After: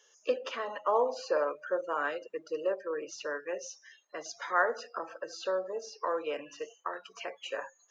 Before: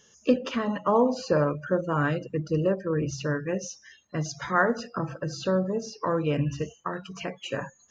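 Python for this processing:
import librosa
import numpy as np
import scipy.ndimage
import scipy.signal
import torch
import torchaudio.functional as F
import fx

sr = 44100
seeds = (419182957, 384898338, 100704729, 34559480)

y = scipy.signal.sosfilt(scipy.signal.butter(4, 440.0, 'highpass', fs=sr, output='sos'), x)
y = fx.high_shelf(y, sr, hz=6100.0, db=-4.5)
y = F.gain(torch.from_numpy(y), -3.5).numpy()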